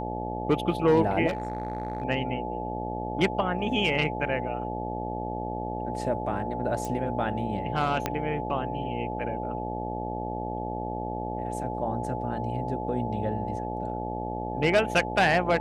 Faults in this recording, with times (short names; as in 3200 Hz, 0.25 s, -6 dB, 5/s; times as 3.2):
buzz 60 Hz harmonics 13 -34 dBFS
tone 860 Hz -34 dBFS
1.27–2.04 clipped -25 dBFS
6.85 pop
8.06 pop -11 dBFS